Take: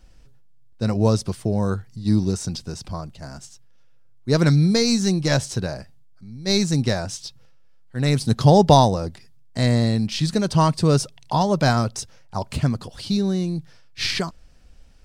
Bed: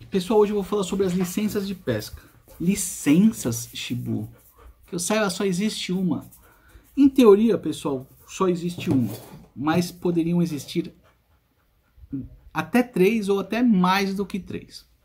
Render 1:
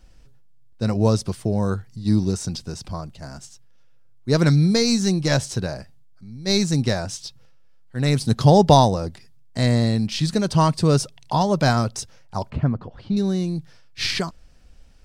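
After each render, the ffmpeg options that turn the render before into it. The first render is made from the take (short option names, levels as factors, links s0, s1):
-filter_complex "[0:a]asettb=1/sr,asplit=3[s0][s1][s2];[s0]atrim=end=12.504[s3];[s1]atrim=start=12.5:end=13.17,asetpts=PTS-STARTPTS,afade=t=in:d=0.004:c=qsin,afade=t=out:st=0.666:d=0.004:c=qsin,lowpass=1500[s4];[s2]atrim=start=13.166[s5];[s3][s4]acrossfade=d=0.004:c1=hsin:c2=qsin[s6];[s6][s5]acrossfade=d=0.004:c1=qsin:c2=hsin"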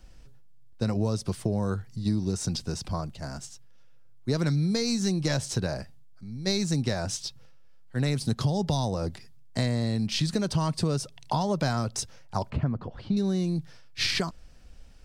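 -filter_complex "[0:a]acrossover=split=240|3100[s0][s1][s2];[s1]alimiter=limit=0.224:level=0:latency=1:release=37[s3];[s0][s3][s2]amix=inputs=3:normalize=0,acompressor=threshold=0.0708:ratio=6"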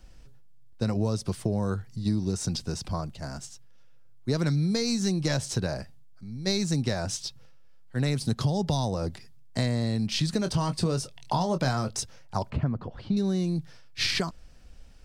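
-filter_complex "[0:a]asettb=1/sr,asplit=3[s0][s1][s2];[s0]atrim=end=10.394[s3];[s1]atrim=start=10.39:end=11.95,asetpts=PTS-STARTPTS,afade=t=in:d=0.004:c=qsin,afade=t=out:st=1.556:d=0.004:c=qsin,asplit=2[s4][s5];[s5]adelay=23,volume=0.355[s6];[s4][s6]amix=inputs=2:normalize=0,atrim=end_sample=68796[s7];[s2]atrim=start=11.946[s8];[s3][s7]acrossfade=d=0.004:c1=hsin:c2=qsin[s9];[s9][s8]acrossfade=d=0.004:c1=qsin:c2=hsin"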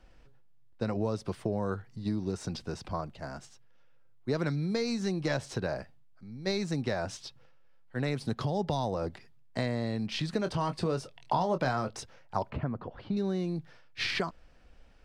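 -af "bass=f=250:g=-8,treble=f=4000:g=-14"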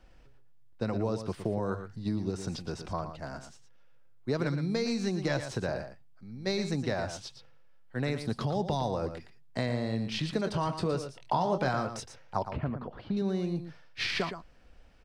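-af "aecho=1:1:115:0.335"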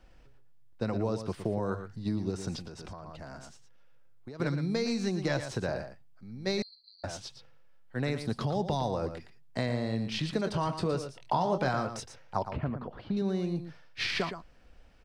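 -filter_complex "[0:a]asettb=1/sr,asplit=3[s0][s1][s2];[s0]atrim=end=2.674[s3];[s1]atrim=start=2.67:end=4.4,asetpts=PTS-STARTPTS,afade=t=in:d=0.004:c=qsin,afade=t=out:st=1.726:d=0.004:c=qsin,acompressor=threshold=0.0112:ratio=12:attack=3.2:release=140:knee=1:detection=peak[s4];[s2]atrim=start=4.396[s5];[s3][s4]acrossfade=d=0.004:c1=hsin:c2=qsin[s6];[s6][s5]acrossfade=d=0.004:c1=qsin:c2=hsin,asettb=1/sr,asplit=3[s7][s8][s9];[s7]atrim=end=6.624[s10];[s8]atrim=start=6.62:end=7.04,asetpts=PTS-STARTPTS,afade=t=in:d=0.004:c=qsin,afade=t=out:st=0.416:d=0.004:c=qsin,asuperpass=centerf=4400:order=12:qfactor=7.2[s11];[s9]atrim=start=7.036[s12];[s10][s11]acrossfade=d=0.004:c1=hsin:c2=qsin[s13];[s13][s12]acrossfade=d=0.004:c1=qsin:c2=hsin"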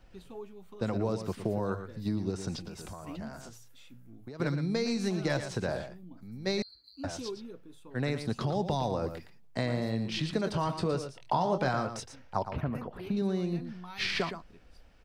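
-filter_complex "[1:a]volume=0.0501[s0];[0:a][s0]amix=inputs=2:normalize=0"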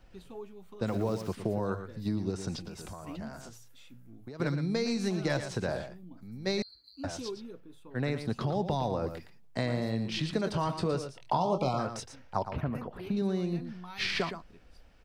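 -filter_complex "[0:a]asettb=1/sr,asplit=3[s0][s1][s2];[s0]atrim=end=0.884[s3];[s1]atrim=start=0.88:end=1.28,asetpts=PTS-STARTPTS,afade=t=in:d=0.004:c=qsin,afade=t=out:st=0.396:d=0.004:c=qsin,aeval=exprs='val(0)*gte(abs(val(0)),0.00501)':c=same[s4];[s2]atrim=start=1.276[s5];[s3][s4]acrossfade=d=0.004:c1=hsin:c2=qsin[s6];[s6][s5]acrossfade=d=0.004:c1=qsin:c2=hsin,asettb=1/sr,asplit=3[s7][s8][s9];[s7]atrim=end=7.604[s10];[s8]atrim=start=7.6:end=9.07,asetpts=PTS-STARTPTS,afade=t=in:d=0.004:c=qsin,afade=t=out:st=1.466:d=0.004:c=qsin,equalizer=f=7300:w=0.71:g=-5[s11];[s9]atrim=start=9.066[s12];[s10][s11]acrossfade=d=0.004:c1=hsin:c2=qsin[s13];[s13][s12]acrossfade=d=0.004:c1=qsin:c2=hsin,asplit=3[s14][s15][s16];[s14]afade=t=out:st=11.37:d=0.02[s17];[s15]asuperstop=centerf=1700:order=12:qfactor=2.1,afade=t=in:st=11.37:d=0.02,afade=t=out:st=11.78:d=0.02[s18];[s16]afade=t=in:st=11.78:d=0.02[s19];[s17][s18][s19]amix=inputs=3:normalize=0"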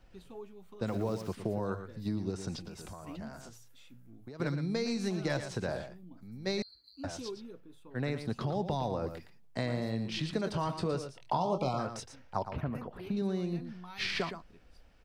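-af "volume=0.75"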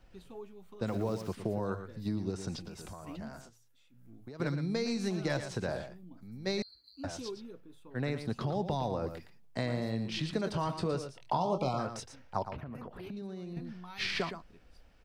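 -filter_complex "[0:a]asettb=1/sr,asplit=3[s0][s1][s2];[s0]atrim=end=12.544[s3];[s1]atrim=start=12.54:end=13.57,asetpts=PTS-STARTPTS,afade=t=in:d=0.004:c=qsin,afade=t=out:st=1.026:d=0.004:c=qsin,acompressor=threshold=0.0112:ratio=5:attack=3.2:release=140:knee=1:detection=peak[s4];[s2]atrim=start=13.566[s5];[s3][s4]acrossfade=d=0.004:c1=hsin:c2=qsin[s6];[s6][s5]acrossfade=d=0.004:c1=qsin:c2=hsin,asplit=3[s7][s8][s9];[s7]atrim=end=3.51,asetpts=PTS-STARTPTS,afade=t=out:st=3.38:d=0.13:silence=0.298538[s10];[s8]atrim=start=3.51:end=3.92,asetpts=PTS-STARTPTS,volume=0.299[s11];[s9]atrim=start=3.92,asetpts=PTS-STARTPTS,afade=t=in:d=0.13:silence=0.298538[s12];[s10][s11][s12]concat=n=3:v=0:a=1"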